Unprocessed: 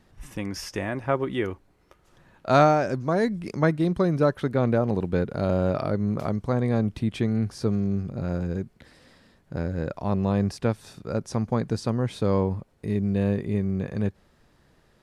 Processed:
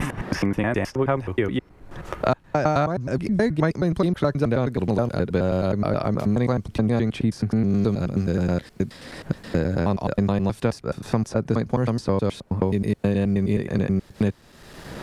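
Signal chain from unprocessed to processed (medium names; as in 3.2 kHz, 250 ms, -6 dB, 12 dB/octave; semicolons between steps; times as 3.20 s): slices played last to first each 106 ms, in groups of 3; three bands compressed up and down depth 100%; trim +2 dB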